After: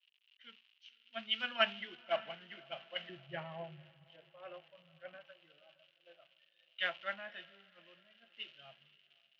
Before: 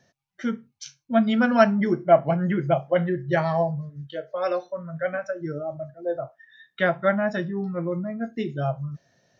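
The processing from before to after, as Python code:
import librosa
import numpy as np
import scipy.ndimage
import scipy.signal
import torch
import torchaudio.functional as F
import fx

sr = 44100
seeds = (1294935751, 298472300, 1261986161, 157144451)

y = fx.block_float(x, sr, bits=5)
y = fx.tilt_eq(y, sr, slope=-4.5, at=(3.09, 5.24))
y = fx.dmg_crackle(y, sr, seeds[0], per_s=240.0, level_db=-29.0)
y = fx.bandpass_q(y, sr, hz=2900.0, q=7.7)
y = fx.air_absorb(y, sr, metres=280.0)
y = fx.echo_diffused(y, sr, ms=536, feedback_pct=54, wet_db=-13.5)
y = fx.band_widen(y, sr, depth_pct=100)
y = y * librosa.db_to_amplitude(4.5)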